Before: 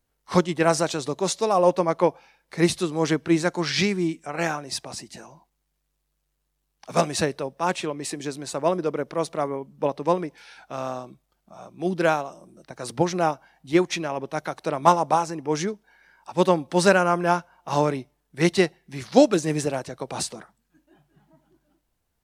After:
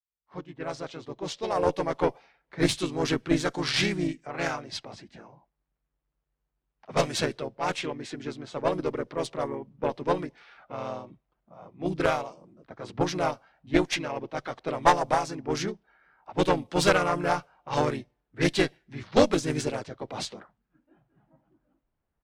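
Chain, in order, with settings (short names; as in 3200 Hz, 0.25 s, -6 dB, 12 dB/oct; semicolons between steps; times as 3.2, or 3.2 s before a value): opening faded in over 2.21 s; low-pass opened by the level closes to 2000 Hz, open at -18.5 dBFS; dynamic EQ 3300 Hz, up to +5 dB, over -40 dBFS, Q 0.9; harmoniser -3 st -3 dB; added harmonics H 4 -14 dB, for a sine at 1 dBFS; gain -6 dB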